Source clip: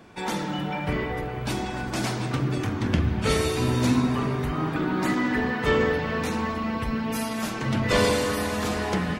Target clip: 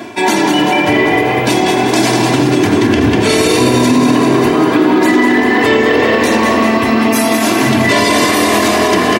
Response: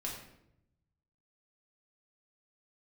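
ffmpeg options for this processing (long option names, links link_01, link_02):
-filter_complex "[0:a]highpass=frequency=120:width=0.5412,highpass=frequency=120:width=1.3066,bandreject=frequency=1300:width=7.4,aecho=1:1:3:0.89,areverse,acompressor=mode=upward:threshold=-26dB:ratio=2.5,areverse,asplit=9[link_01][link_02][link_03][link_04][link_05][link_06][link_07][link_08][link_09];[link_02]adelay=194,afreqshift=41,volume=-7dB[link_10];[link_03]adelay=388,afreqshift=82,volume=-11.6dB[link_11];[link_04]adelay=582,afreqshift=123,volume=-16.2dB[link_12];[link_05]adelay=776,afreqshift=164,volume=-20.7dB[link_13];[link_06]adelay=970,afreqshift=205,volume=-25.3dB[link_14];[link_07]adelay=1164,afreqshift=246,volume=-29.9dB[link_15];[link_08]adelay=1358,afreqshift=287,volume=-34.5dB[link_16];[link_09]adelay=1552,afreqshift=328,volume=-39.1dB[link_17];[link_01][link_10][link_11][link_12][link_13][link_14][link_15][link_16][link_17]amix=inputs=9:normalize=0,alimiter=level_in=17dB:limit=-1dB:release=50:level=0:latency=1,volume=-1dB"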